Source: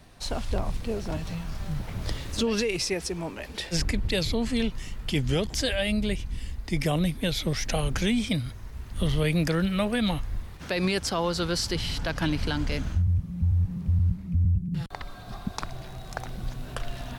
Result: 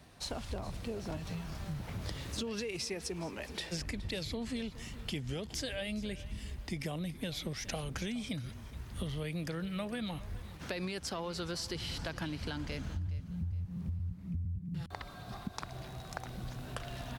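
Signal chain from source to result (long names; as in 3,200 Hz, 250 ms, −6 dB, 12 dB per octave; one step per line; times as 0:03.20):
high-pass filter 55 Hz
downward compressor, threshold −31 dBFS, peak gain reduction 10.5 dB
repeating echo 418 ms, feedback 32%, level −17.5 dB
level −4 dB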